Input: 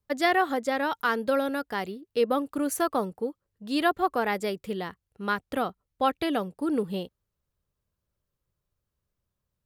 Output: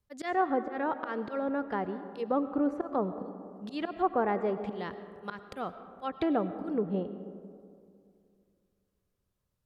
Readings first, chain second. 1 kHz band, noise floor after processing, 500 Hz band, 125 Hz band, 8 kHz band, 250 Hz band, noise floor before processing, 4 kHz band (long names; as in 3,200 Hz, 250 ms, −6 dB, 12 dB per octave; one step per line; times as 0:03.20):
−4.5 dB, −80 dBFS, −4.0 dB, −0.5 dB, below −20 dB, −2.5 dB, −84 dBFS, −14.5 dB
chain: volume swells 220 ms
treble cut that deepens with the level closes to 1,100 Hz, closed at −27.5 dBFS
comb and all-pass reverb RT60 2.4 s, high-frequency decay 0.35×, pre-delay 65 ms, DRR 11 dB